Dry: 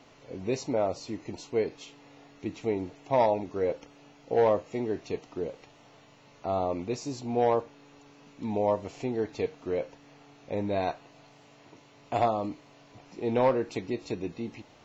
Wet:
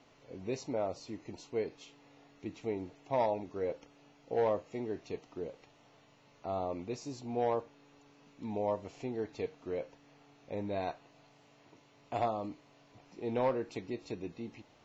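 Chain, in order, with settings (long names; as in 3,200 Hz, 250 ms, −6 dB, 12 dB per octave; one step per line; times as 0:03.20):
low-pass filter 9,200 Hz
level −7 dB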